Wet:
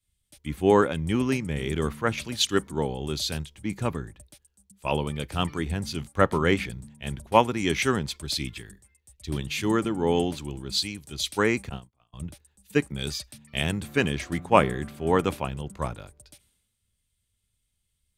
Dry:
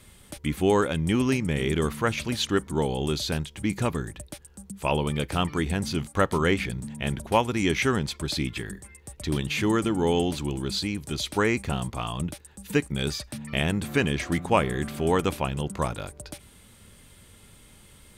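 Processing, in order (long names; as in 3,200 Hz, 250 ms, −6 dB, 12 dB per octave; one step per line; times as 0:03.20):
0:11.69–0:12.13: noise gate −26 dBFS, range −28 dB
multiband upward and downward expander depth 100%
level −2 dB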